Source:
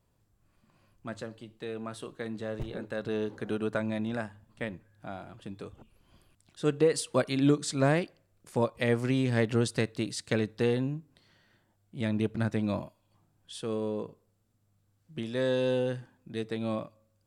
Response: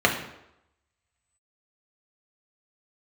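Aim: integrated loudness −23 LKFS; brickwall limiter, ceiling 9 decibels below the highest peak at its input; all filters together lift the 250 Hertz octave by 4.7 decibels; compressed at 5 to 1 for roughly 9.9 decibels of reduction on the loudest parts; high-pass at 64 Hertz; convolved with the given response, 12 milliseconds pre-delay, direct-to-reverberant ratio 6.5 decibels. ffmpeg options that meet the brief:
-filter_complex "[0:a]highpass=64,equalizer=frequency=250:width_type=o:gain=5.5,acompressor=threshold=-27dB:ratio=5,alimiter=limit=-23.5dB:level=0:latency=1,asplit=2[link_01][link_02];[1:a]atrim=start_sample=2205,adelay=12[link_03];[link_02][link_03]afir=irnorm=-1:irlink=0,volume=-24.5dB[link_04];[link_01][link_04]amix=inputs=2:normalize=0,volume=12.5dB"

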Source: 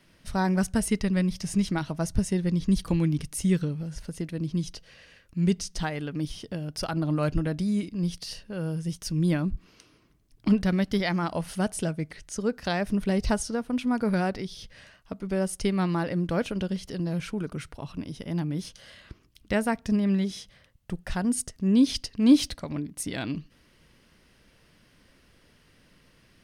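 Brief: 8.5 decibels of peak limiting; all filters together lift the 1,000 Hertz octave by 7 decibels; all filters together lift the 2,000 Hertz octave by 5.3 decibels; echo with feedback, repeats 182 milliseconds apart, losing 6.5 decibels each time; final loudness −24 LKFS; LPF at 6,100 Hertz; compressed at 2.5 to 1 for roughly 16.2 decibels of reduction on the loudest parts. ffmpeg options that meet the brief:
ffmpeg -i in.wav -af "lowpass=6100,equalizer=frequency=1000:width_type=o:gain=8.5,equalizer=frequency=2000:width_type=o:gain=3.5,acompressor=threshold=-38dB:ratio=2.5,alimiter=level_in=6dB:limit=-24dB:level=0:latency=1,volume=-6dB,aecho=1:1:182|364|546|728|910|1092:0.473|0.222|0.105|0.0491|0.0231|0.0109,volume=15.5dB" out.wav

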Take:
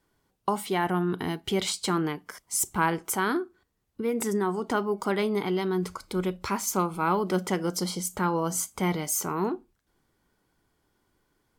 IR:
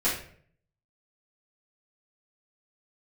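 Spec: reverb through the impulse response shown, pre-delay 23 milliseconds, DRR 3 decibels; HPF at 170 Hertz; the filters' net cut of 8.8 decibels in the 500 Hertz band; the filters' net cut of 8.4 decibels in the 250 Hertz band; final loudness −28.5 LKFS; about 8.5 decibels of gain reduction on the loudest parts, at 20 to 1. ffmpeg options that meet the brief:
-filter_complex "[0:a]highpass=170,equalizer=frequency=250:width_type=o:gain=-8,equalizer=frequency=500:width_type=o:gain=-8.5,acompressor=threshold=-30dB:ratio=20,asplit=2[link_01][link_02];[1:a]atrim=start_sample=2205,adelay=23[link_03];[link_02][link_03]afir=irnorm=-1:irlink=0,volume=-14dB[link_04];[link_01][link_04]amix=inputs=2:normalize=0,volume=5.5dB"

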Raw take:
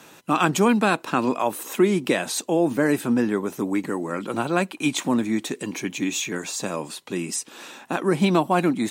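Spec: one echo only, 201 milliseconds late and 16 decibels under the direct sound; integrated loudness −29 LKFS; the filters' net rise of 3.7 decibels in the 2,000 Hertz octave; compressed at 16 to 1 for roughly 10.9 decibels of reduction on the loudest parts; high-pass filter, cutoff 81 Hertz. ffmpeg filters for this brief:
ffmpeg -i in.wav -af "highpass=81,equalizer=frequency=2000:width_type=o:gain=5,acompressor=threshold=-24dB:ratio=16,aecho=1:1:201:0.158,volume=0.5dB" out.wav

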